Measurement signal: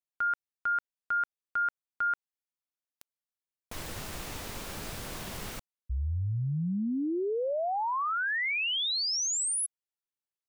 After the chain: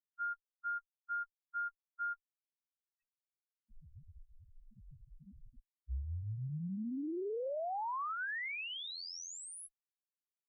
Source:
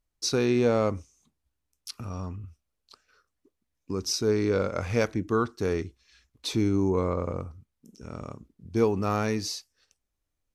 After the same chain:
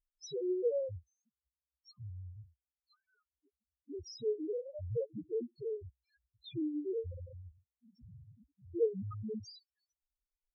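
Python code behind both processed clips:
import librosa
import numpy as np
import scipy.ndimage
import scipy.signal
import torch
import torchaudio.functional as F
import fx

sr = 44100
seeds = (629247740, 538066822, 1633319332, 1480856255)

y = fx.cheby_harmonics(x, sr, harmonics=(2, 3, 5), levels_db=(-28, -7, -18), full_scale_db=-12.0)
y = fx.spec_topn(y, sr, count=1)
y = fx.dereverb_blind(y, sr, rt60_s=0.87)
y = y * librosa.db_to_amplitude(9.0)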